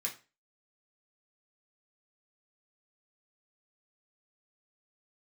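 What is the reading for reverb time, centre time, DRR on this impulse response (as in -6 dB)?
0.30 s, 14 ms, -2.0 dB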